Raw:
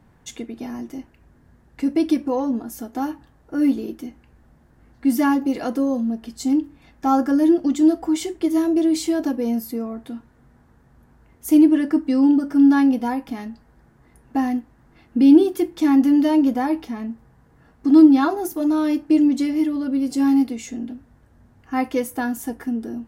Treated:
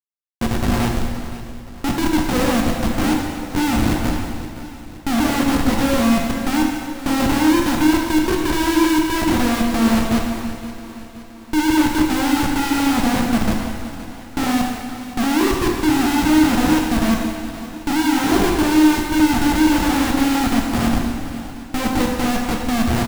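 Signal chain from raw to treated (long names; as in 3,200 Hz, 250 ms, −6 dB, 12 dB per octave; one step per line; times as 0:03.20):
every frequency bin delayed by itself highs late, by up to 593 ms
spectral tilt −4.5 dB per octave
in parallel at +2 dB: downward compressor 6 to 1, threshold −19 dBFS, peak gain reduction 18 dB
on the sum: comparator with hysteresis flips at −14 dBFS
on a send: repeating echo 520 ms, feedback 54%, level −15 dB
on the sum: dense smooth reverb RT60 1.8 s, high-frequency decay 0.95×, DRR −0.5 dB
level −7 dB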